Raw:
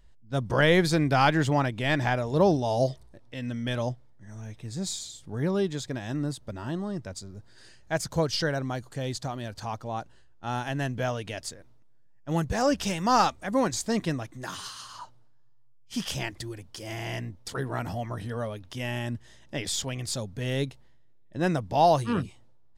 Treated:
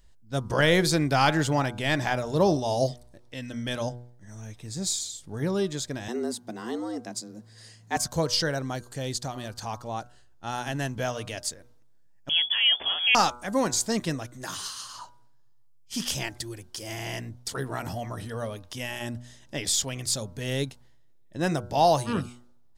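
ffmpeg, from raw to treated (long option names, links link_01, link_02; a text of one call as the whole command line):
ffmpeg -i in.wav -filter_complex "[0:a]asettb=1/sr,asplit=3[link_01][link_02][link_03];[link_01]atrim=end=6.084[link_04];[link_02]atrim=start=6.08:end=7.97,asetpts=PTS-STARTPTS,afade=type=in:duration=0.004:curve=qsin,afade=type=out:start_time=1.886:duration=0.004:curve=qsin,afreqshift=110[link_05];[link_03]atrim=start=7.966[link_06];[link_04][link_05]acrossfade=duration=0.004:curve1=hsin:curve2=qsin[link_07];[link_07][link_06]acrossfade=duration=0.004:curve1=qsin:curve2=hsin,asettb=1/sr,asplit=3[link_08][link_09][link_10];[link_08]atrim=end=12.294[link_11];[link_09]atrim=start=12.29:end=13.15,asetpts=PTS-STARTPTS,afade=type=in:duration=0.004:curve=qsin,afade=type=out:start_time=0.856:duration=0.004:curve=qsin,lowpass=frequency=3000:width_type=q:width=0.5098,lowpass=frequency=3000:width_type=q:width=0.6013,lowpass=frequency=3000:width_type=q:width=0.9,lowpass=frequency=3000:width_type=q:width=2.563,afreqshift=-3500[link_12];[link_10]atrim=start=13.146[link_13];[link_11][link_12]acrossfade=duration=0.004:curve1=hsin:curve2=qsin[link_14];[link_14][link_13]acrossfade=duration=0.004:curve1=qsin:curve2=hsin,bass=frequency=250:gain=-1,treble=frequency=4000:gain=7,bandreject=frequency=121.4:width_type=h:width=4,bandreject=frequency=242.8:width_type=h:width=4,bandreject=frequency=364.2:width_type=h:width=4,bandreject=frequency=485.6:width_type=h:width=4,bandreject=frequency=607:width_type=h:width=4,bandreject=frequency=728.4:width_type=h:width=4,bandreject=frequency=849.8:width_type=h:width=4,bandreject=frequency=971.2:width_type=h:width=4,bandreject=frequency=1092.6:width_type=h:width=4,bandreject=frequency=1214:width_type=h:width=4,bandreject=frequency=1335.4:width_type=h:width=4,bandreject=frequency=1456.8:width_type=h:width=4,bandreject=frequency=1578.2:width_type=h:width=4" out.wav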